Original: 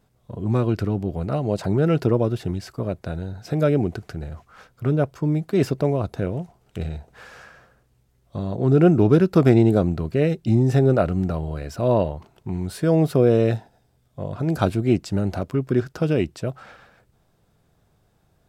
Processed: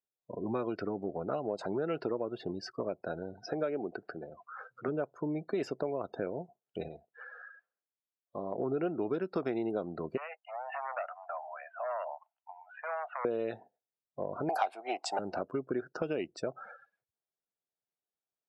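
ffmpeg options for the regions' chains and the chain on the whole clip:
ffmpeg -i in.wav -filter_complex "[0:a]asettb=1/sr,asplit=3[link_01][link_02][link_03];[link_01]atrim=end=3.434[link_04];[link_02]atrim=start=3.43:end=4.88,asetpts=PTS-STARTPTS,afade=type=in:duration=0.004:curve=qsin,afade=type=out:start_time=1.446:duration=0.004:curve=qsin,highshelf=frequency=7000:gain=-11.5,acompressor=mode=upward:threshold=-34dB:ratio=2.5:attack=3.2:release=140:knee=2.83:detection=peak,highpass=frequency=210:poles=1[link_05];[link_03]atrim=start=4.876[link_06];[link_04][link_05]acrossfade=duration=0.004:curve1=hsin:curve2=qsin[link_07];[link_07][link_06]acrossfade=duration=0.004:curve1=qsin:curve2=hsin,asettb=1/sr,asplit=3[link_08][link_09][link_10];[link_08]atrim=end=6.884[link_11];[link_09]atrim=start=6.88:end=8.58,asetpts=PTS-STARTPTS,afade=type=in:duration=0.004:curve=qsin,afade=type=out:start_time=1.696:duration=0.004:curve=qsin,lowpass=frequency=4400:width=0.5412,lowpass=frequency=4400:width=1.3066,lowshelf=frequency=350:gain=-6.5[link_12];[link_10]atrim=start=8.576[link_13];[link_11][link_12]acrossfade=duration=0.004:curve1=hsin:curve2=qsin[link_14];[link_14][link_13]acrossfade=duration=0.004:curve1=qsin:curve2=hsin,asettb=1/sr,asplit=3[link_15][link_16][link_17];[link_15]atrim=end=10.174[link_18];[link_16]atrim=start=10.17:end=13.25,asetpts=PTS-STARTPTS,afade=type=in:duration=0.004:curve=qsin,afade=type=out:start_time=3.076:duration=0.004:curve=qsin,asoftclip=type=hard:threshold=-15.5dB,asuperpass=centerf=1400:order=12:qfactor=0.6,acompressor=threshold=-33dB:ratio=2.5:attack=3.2:release=140:knee=1:detection=peak[link_19];[link_17]atrim=start=13.246[link_20];[link_18][link_19]acrossfade=duration=0.004:curve1=hsin:curve2=qsin[link_21];[link_21][link_20]acrossfade=duration=0.004:curve1=qsin:curve2=hsin,asettb=1/sr,asplit=3[link_22][link_23][link_24];[link_22]atrim=end=14.494[link_25];[link_23]atrim=start=14.49:end=15.19,asetpts=PTS-STARTPTS,afade=type=in:duration=0.004:curve=qsin,afade=type=out:start_time=0.696:duration=0.004:curve=qsin,highpass=frequency=760:width_type=q:width=9.3,acontrast=28[link_26];[link_24]atrim=start=15.186[link_27];[link_25][link_26]acrossfade=duration=0.004:curve1=hsin:curve2=qsin[link_28];[link_28][link_27]acrossfade=duration=0.004:curve1=qsin:curve2=hsin,afftdn=noise_reduction=33:noise_floor=-40,highpass=360,acompressor=threshold=-31dB:ratio=5" out.wav

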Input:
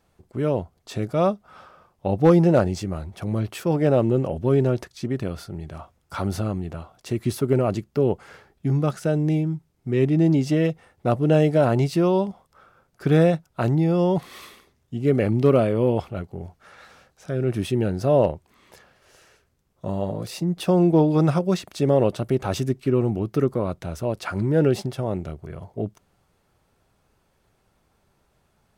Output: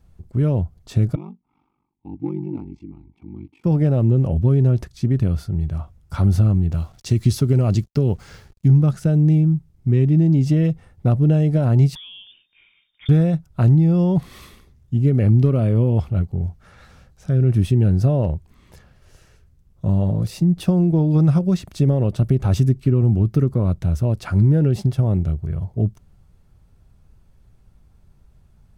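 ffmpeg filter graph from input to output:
ffmpeg -i in.wav -filter_complex "[0:a]asettb=1/sr,asplit=3[link_01][link_02][link_03];[link_01]atrim=end=1.154[link_04];[link_02]atrim=start=1.15:end=3.64,asetpts=PTS-STARTPTS,afade=type=in:duration=0.004:curve=qsin,afade=type=out:start_time=2.486:duration=0.004:curve=qsin,asplit=3[link_05][link_06][link_07];[link_05]bandpass=frequency=300:width_type=q:width=8,volume=0dB[link_08];[link_06]bandpass=frequency=870:width_type=q:width=8,volume=-6dB[link_09];[link_07]bandpass=frequency=2240:width_type=q:width=8,volume=-9dB[link_10];[link_08][link_09][link_10]amix=inputs=3:normalize=0,equalizer=frequency=680:width=1.6:gain=-3,aeval=exprs='val(0)*sin(2*PI*24*n/s)':channel_layout=same[link_11];[link_03]atrim=start=3.636[link_12];[link_04][link_11]acrossfade=duration=0.004:curve1=hsin:curve2=qsin[link_13];[link_13][link_12]acrossfade=duration=0.004:curve1=qsin:curve2=hsin,asettb=1/sr,asplit=3[link_14][link_15][link_16];[link_14]atrim=end=6.724[link_17];[link_15]atrim=start=6.72:end=8.68,asetpts=PTS-STARTPTS,afade=type=in:duration=0.004:curve=qsin,afade=type=out:start_time=1.956:duration=0.004:curve=qsin,equalizer=frequency=5300:width_type=o:width=1.7:gain=10.5,acrusher=bits=8:mix=0:aa=0.5[link_18];[link_16]atrim=start=8.676[link_19];[link_17][link_18]acrossfade=duration=0.004:curve1=hsin:curve2=qsin[link_20];[link_20][link_19]acrossfade=duration=0.004:curve1=qsin:curve2=hsin,asettb=1/sr,asplit=3[link_21][link_22][link_23];[link_21]atrim=end=11.954[link_24];[link_22]atrim=start=11.95:end=13.09,asetpts=PTS-STARTPTS,afade=type=in:duration=0.004:curve=qsin,afade=type=out:start_time=1.136:duration=0.004:curve=qsin,equalizer=frequency=200:width=3.4:gain=-14,lowpass=frequency=3100:width_type=q:width=0.5098,lowpass=frequency=3100:width_type=q:width=0.6013,lowpass=frequency=3100:width_type=q:width=0.9,lowpass=frequency=3100:width_type=q:width=2.563,afreqshift=-3700,acompressor=threshold=-34dB:ratio=16:attack=3.2:release=140:knee=1:detection=peak[link_25];[link_23]atrim=start=13.086[link_26];[link_24][link_25]acrossfade=duration=0.004:curve1=hsin:curve2=qsin[link_27];[link_27][link_26]acrossfade=duration=0.004:curve1=qsin:curve2=hsin,lowshelf=frequency=65:gain=12,acompressor=threshold=-18dB:ratio=6,bass=frequency=250:gain=14,treble=frequency=4000:gain=2,volume=-3dB" out.wav

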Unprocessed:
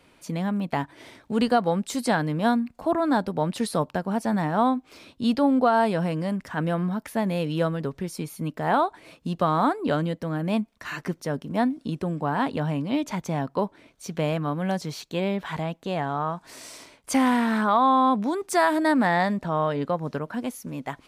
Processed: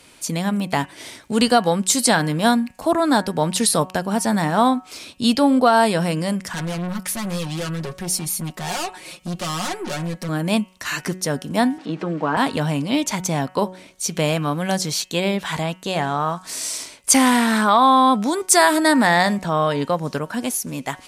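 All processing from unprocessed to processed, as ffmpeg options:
ffmpeg -i in.wav -filter_complex "[0:a]asettb=1/sr,asplit=3[link_01][link_02][link_03];[link_01]atrim=end=6.534[link_04];[link_02]atrim=start=6.53:end=10.29,asetpts=PTS-STARTPTS,afade=type=in:duration=0.004:curve=qsin,afade=type=out:start_time=3.756:duration=0.004:curve=qsin,aeval=exprs='(tanh(44.7*val(0)+0.25)-tanh(0.25))/44.7':channel_layout=same,aecho=1:1:5.5:0.84,atrim=end_sample=165816[link_05];[link_03]atrim=start=10.286[link_06];[link_04][link_05]acrossfade=duration=0.004:curve1=hsin:curve2=qsin[link_07];[link_07][link_06]acrossfade=duration=0.004:curve1=qsin:curve2=hsin,asettb=1/sr,asplit=3[link_08][link_09][link_10];[link_08]atrim=end=11.784[link_11];[link_09]atrim=start=11.78:end=12.37,asetpts=PTS-STARTPTS,afade=type=in:duration=0.004:curve=qsin,afade=type=out:start_time=0.586:duration=0.004:curve=qsin,aeval=exprs='val(0)+0.5*0.00841*sgn(val(0))':channel_layout=same,highpass=260,lowpass=2200,aecho=1:1:6.3:0.64,atrim=end_sample=26019[link_12];[link_10]atrim=start=12.366[link_13];[link_11][link_12]acrossfade=duration=0.004:curve1=hsin:curve2=qsin[link_14];[link_14][link_13]acrossfade=duration=0.004:curve1=qsin:curve2=hsin,equalizer=frequency=8600:width=0.39:gain=14.5,bandreject=frequency=185.4:width_type=h:width=4,bandreject=frequency=370.8:width_type=h:width=4,bandreject=frequency=556.2:width_type=h:width=4,bandreject=frequency=741.6:width_type=h:width=4,bandreject=frequency=927:width_type=h:width=4,bandreject=frequency=1112.4:width_type=h:width=4,bandreject=frequency=1297.8:width_type=h:width=4,bandreject=frequency=1483.2:width_type=h:width=4,bandreject=frequency=1668.6:width_type=h:width=4,bandreject=frequency=1854:width_type=h:width=4,bandreject=frequency=2039.4:width_type=h:width=4,bandreject=frequency=2224.8:width_type=h:width=4,bandreject=frequency=2410.2:width_type=h:width=4,bandreject=frequency=2595.6:width_type=h:width=4,bandreject=frequency=2781:width_type=h:width=4,bandreject=frequency=2966.4:width_type=h:width=4,bandreject=frequency=3151.8:width_type=h:width=4,volume=4.5dB" out.wav

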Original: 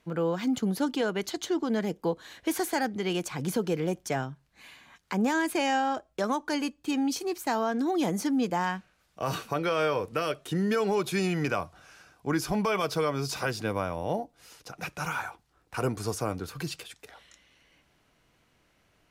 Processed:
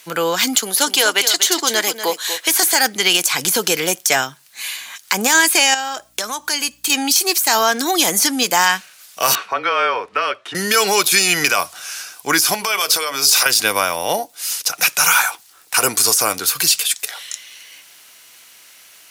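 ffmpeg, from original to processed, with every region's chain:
ffmpeg -i in.wav -filter_complex "[0:a]asettb=1/sr,asplit=3[link_01][link_02][link_03];[link_01]atrim=end=0.554[link_04];[link_02]atrim=start=0.55:end=2.63,asetpts=PTS-STARTPTS,afade=type=in:duration=0.004:curve=qsin,afade=type=out:start_time=2.076:duration=0.004:curve=qsin,highpass=320,aecho=1:1:242:0.282,atrim=end_sample=91728[link_05];[link_03]atrim=start=2.626[link_06];[link_04][link_05]acrossfade=duration=0.004:curve1=hsin:curve2=qsin[link_07];[link_07][link_06]acrossfade=duration=0.004:curve1=qsin:curve2=hsin,asettb=1/sr,asplit=3[link_08][link_09][link_10];[link_08]atrim=end=5.744[link_11];[link_09]atrim=start=5.74:end=6.9,asetpts=PTS-STARTPTS,afade=type=in:duration=0.004:curve=qsin,afade=type=out:start_time=1.156:duration=0.004:curve=qsin,acompressor=threshold=-37dB:ratio=3:attack=3.2:release=140:knee=1:detection=peak,aeval=exprs='val(0)+0.000891*(sin(2*PI*60*n/s)+sin(2*PI*2*60*n/s)/2+sin(2*PI*3*60*n/s)/3+sin(2*PI*4*60*n/s)/4+sin(2*PI*5*60*n/s)/5)':channel_layout=same,asubboost=boost=5:cutoff=220[link_12];[link_10]atrim=start=6.896[link_13];[link_11][link_12]acrossfade=duration=0.004:curve1=hsin:curve2=qsin[link_14];[link_14][link_13]acrossfade=duration=0.004:curve1=qsin:curve2=hsin,asettb=1/sr,asplit=3[link_15][link_16][link_17];[link_15]atrim=end=9.354[link_18];[link_16]atrim=start=9.35:end=10.55,asetpts=PTS-STARTPTS,afade=type=in:duration=0.004:curve=qsin,afade=type=out:start_time=1.196:duration=0.004:curve=qsin,lowpass=1600,lowshelf=frequency=460:gain=-11,afreqshift=-27[link_19];[link_17]atrim=start=10.546[link_20];[link_18][link_19]acrossfade=duration=0.004:curve1=hsin:curve2=qsin[link_21];[link_21][link_20]acrossfade=duration=0.004:curve1=qsin:curve2=hsin,asettb=1/sr,asplit=3[link_22][link_23][link_24];[link_22]atrim=end=12.544[link_25];[link_23]atrim=start=12.54:end=13.46,asetpts=PTS-STARTPTS,afade=type=in:duration=0.004:curve=qsin,afade=type=out:start_time=0.916:duration=0.004:curve=qsin,equalizer=frequency=160:width_type=o:width=0.4:gain=-12,bandreject=frequency=60:width_type=h:width=6,bandreject=frequency=120:width_type=h:width=6,bandreject=frequency=180:width_type=h:width=6,bandreject=frequency=240:width_type=h:width=6,bandreject=frequency=300:width_type=h:width=6,bandreject=frequency=360:width_type=h:width=6,bandreject=frequency=420:width_type=h:width=6,bandreject=frequency=480:width_type=h:width=6,bandreject=frequency=540:width_type=h:width=6,acompressor=threshold=-31dB:ratio=12:attack=3.2:release=140:knee=1:detection=peak[link_26];[link_24]atrim=start=13.456[link_27];[link_25][link_26]acrossfade=duration=0.004:curve1=hsin:curve2=qsin[link_28];[link_28][link_27]acrossfade=duration=0.004:curve1=qsin:curve2=hsin,aderivative,deesser=0.8,alimiter=level_in=32.5dB:limit=-1dB:release=50:level=0:latency=1,volume=-1dB" out.wav

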